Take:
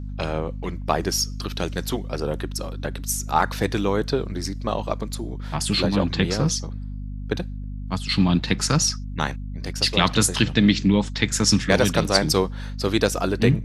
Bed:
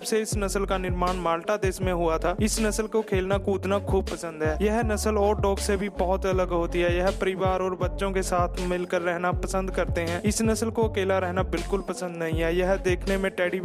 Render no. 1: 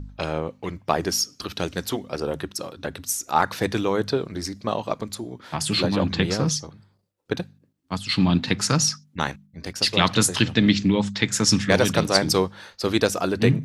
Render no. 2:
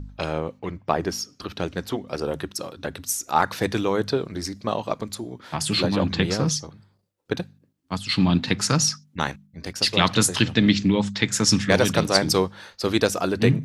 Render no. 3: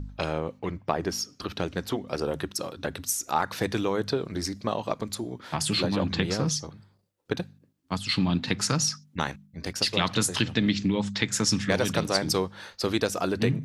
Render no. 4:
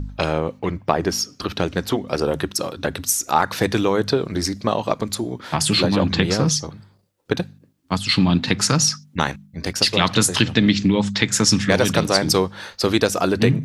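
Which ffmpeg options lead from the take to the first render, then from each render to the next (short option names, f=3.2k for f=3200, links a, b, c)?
-af "bandreject=f=50:t=h:w=4,bandreject=f=100:t=h:w=4,bandreject=f=150:t=h:w=4,bandreject=f=200:t=h:w=4,bandreject=f=250:t=h:w=4"
-filter_complex "[0:a]asettb=1/sr,asplit=3[a][b][c];[a]atrim=end=0.594[d];[b]atrim=start=0.59:end=2.08,asetpts=PTS-STARTPTS,afade=t=in:d=0.004:c=qsin,afade=t=out:st=1.486:d=0.004:c=qsin,equalizer=f=12k:t=o:w=2.4:g=-10[e];[c]atrim=start=2.076[f];[d][e]acrossfade=d=0.004:c1=hsin:c2=qsin[g];[g][f]acrossfade=d=0.004:c1=qsin:c2=hsin"
-af "acompressor=threshold=-25dB:ratio=2"
-af "volume=8dB,alimiter=limit=-1dB:level=0:latency=1"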